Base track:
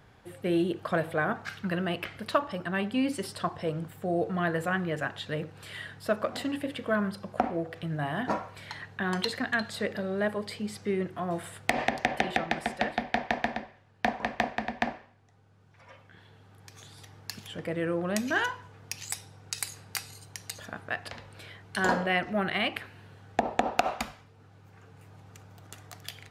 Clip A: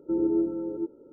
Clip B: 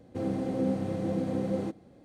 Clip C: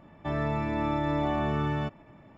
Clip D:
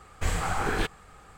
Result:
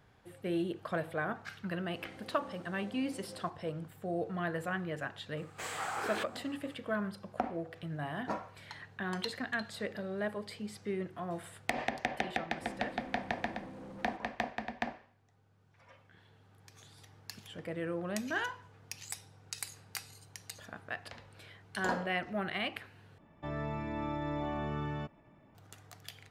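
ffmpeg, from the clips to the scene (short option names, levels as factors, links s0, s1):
-filter_complex "[2:a]asplit=2[s0][s1];[0:a]volume=0.447[s2];[s0]highpass=f=1100:p=1[s3];[4:a]highpass=390[s4];[s1]asoftclip=type=hard:threshold=0.0211[s5];[s2]asplit=2[s6][s7];[s6]atrim=end=23.184[s8];[3:a]atrim=end=2.37,asetpts=PTS-STARTPTS,volume=0.376[s9];[s7]atrim=start=25.546[s10];[s3]atrim=end=2.04,asetpts=PTS-STARTPTS,volume=0.299,afade=t=in:d=0.004:c=hsin,afade=t=out:st=2.036:d=0.004:c=hsin,adelay=1790[s11];[s4]atrim=end=1.37,asetpts=PTS-STARTPTS,volume=0.447,afade=t=in:d=0.004:c=hsin,afade=t=out:st=1.366:d=0.004:c=hsin,adelay=236817S[s12];[s5]atrim=end=2.04,asetpts=PTS-STARTPTS,volume=0.251,afade=t=in:d=0.004:c=hsin,afade=t=out:st=2.036:d=0.004:c=hsin,adelay=12460[s13];[s8][s9]acrossfade=d=0.004:c1=hsin:c2=hsin[s14];[s14][s10]acrossfade=d=0.004:c1=hsin:c2=hsin[s15];[s15][s11][s12][s13]amix=inputs=4:normalize=0"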